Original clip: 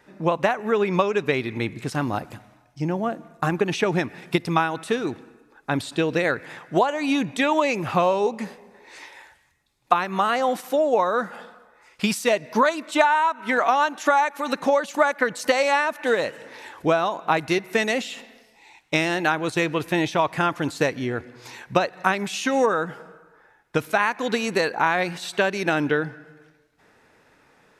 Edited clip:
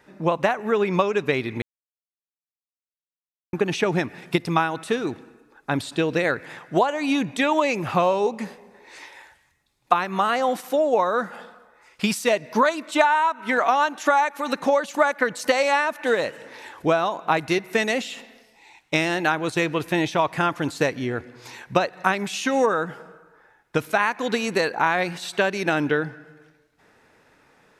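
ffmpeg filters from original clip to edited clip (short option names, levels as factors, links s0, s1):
-filter_complex "[0:a]asplit=3[s0][s1][s2];[s0]atrim=end=1.62,asetpts=PTS-STARTPTS,afade=t=out:st=1.616:d=0.004:c=hsin[s3];[s1]atrim=start=1.62:end=3.53,asetpts=PTS-STARTPTS,volume=0[s4];[s2]atrim=start=3.53,asetpts=PTS-STARTPTS,afade=t=in:d=0.004:c=hsin[s5];[s3][s4][s5]concat=n=3:v=0:a=1"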